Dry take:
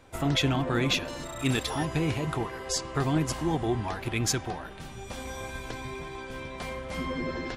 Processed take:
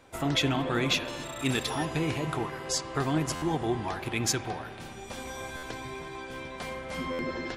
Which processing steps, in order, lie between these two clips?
low-shelf EQ 120 Hz −8 dB
spring reverb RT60 2.9 s, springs 52 ms, chirp 35 ms, DRR 12 dB
buffer that repeats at 0:03.35/0:05.56/0:07.12, samples 512, times 5

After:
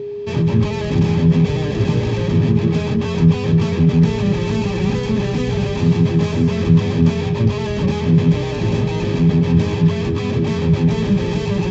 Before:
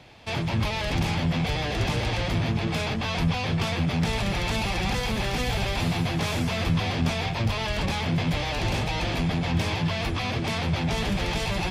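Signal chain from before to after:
phase distortion by the signal itself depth 0.12 ms
steady tone 410 Hz −31 dBFS
parametric band 170 Hz +14 dB 2.6 octaves
notch comb filter 710 Hz
downsampling to 16,000 Hz

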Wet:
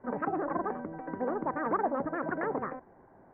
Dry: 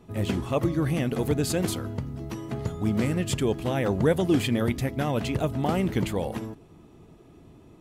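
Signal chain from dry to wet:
Butterworth low-pass 800 Hz 48 dB per octave
wrong playback speed 33 rpm record played at 78 rpm
level −6.5 dB

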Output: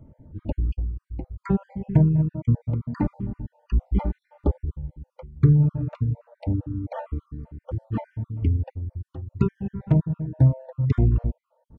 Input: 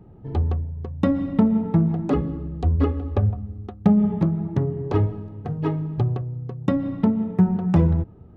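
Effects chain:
time-frequency cells dropped at random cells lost 49%
speed change −29%

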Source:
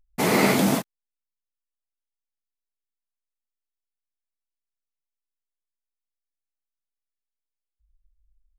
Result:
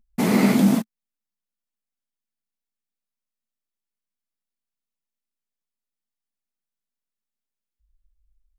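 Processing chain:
parametric band 220 Hz +13.5 dB 0.67 octaves
in parallel at −1 dB: downward compressor, threshold −24 dBFS, peak gain reduction 15.5 dB
on the sum: level −6 dB

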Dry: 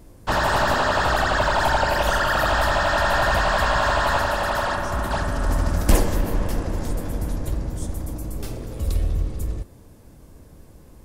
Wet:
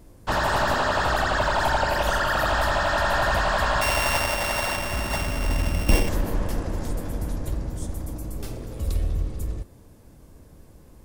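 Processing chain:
0:03.81–0:06.09: samples sorted by size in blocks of 16 samples
level −2.5 dB

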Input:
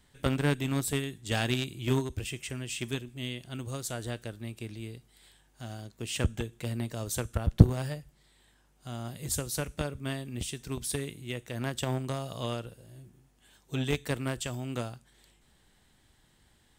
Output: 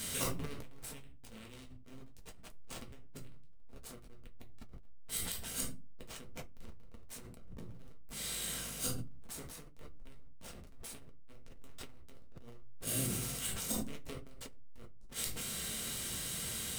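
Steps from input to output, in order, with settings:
compressor on every frequency bin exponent 0.6
first-order pre-emphasis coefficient 0.9
notch filter 7,200 Hz, Q 25
dynamic equaliser 360 Hz, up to +7 dB, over −58 dBFS, Q 0.85
pitch-shifted copies added +7 semitones −15 dB, +12 semitones −12 dB
notch comb filter 860 Hz
gate with flip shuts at −37 dBFS, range −32 dB
slack as between gear wheels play −57.5 dBFS
rectangular room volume 140 cubic metres, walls furnished, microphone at 1.6 metres
level that may fall only so fast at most 21 dB per second
level +13.5 dB

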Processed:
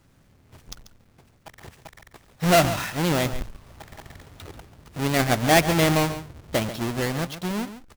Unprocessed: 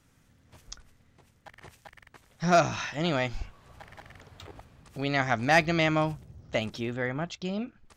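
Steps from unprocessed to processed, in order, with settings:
each half-wave held at its own peak
single-tap delay 139 ms −12.5 dB

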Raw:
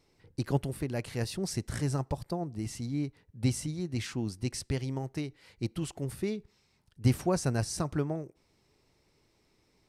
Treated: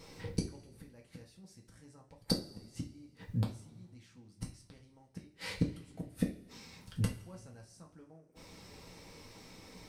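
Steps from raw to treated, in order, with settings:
gate with flip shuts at −31 dBFS, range −40 dB
coupled-rooms reverb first 0.3 s, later 1.7 s, from −20 dB, DRR −1 dB
level +13 dB

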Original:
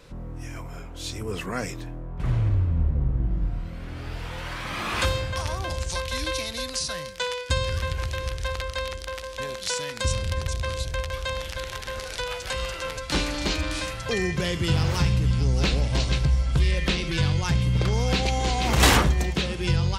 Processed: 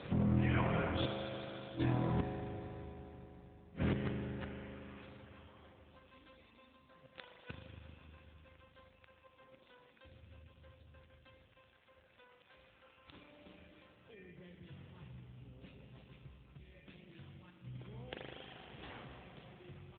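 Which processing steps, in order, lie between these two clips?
0:01.18–0:02.24: mains-hum notches 60/120/180/240/300 Hz
bad sample-rate conversion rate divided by 2×, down filtered, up hold
0:17.49–0:18.13: gate with flip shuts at −18 dBFS, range −32 dB
low-shelf EQ 63 Hz +6 dB
gate with flip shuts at −23 dBFS, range −37 dB
0:06.56–0:07.14: low-shelf EQ 320 Hz +3 dB
far-end echo of a speakerphone 100 ms, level −23 dB
spring reverb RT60 3.9 s, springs 39 ms, chirp 80 ms, DRR 1.5 dB
level +7 dB
AMR narrowband 7.4 kbit/s 8,000 Hz

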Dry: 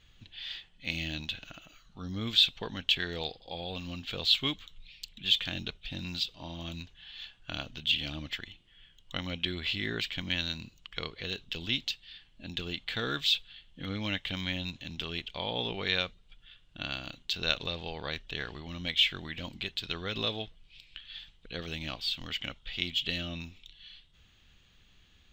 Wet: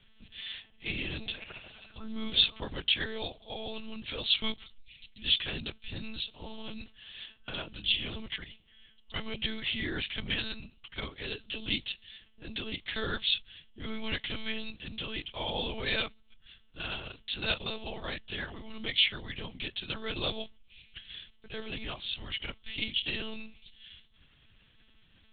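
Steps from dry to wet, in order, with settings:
0:00.54–0:02.81: echo through a band-pass that steps 134 ms, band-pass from 480 Hz, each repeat 0.7 octaves, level −4 dB
one-pitch LPC vocoder at 8 kHz 220 Hz

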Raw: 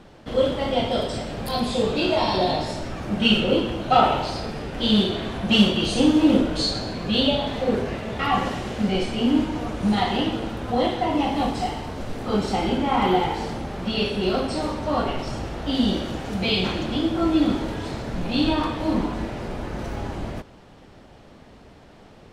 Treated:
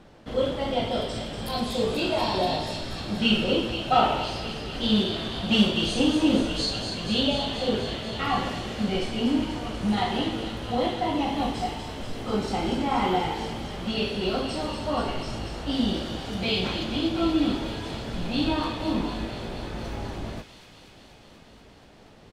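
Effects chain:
double-tracking delay 18 ms −11 dB
delay with a high-pass on its return 241 ms, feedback 79%, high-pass 2,800 Hz, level −6 dB
level −4 dB

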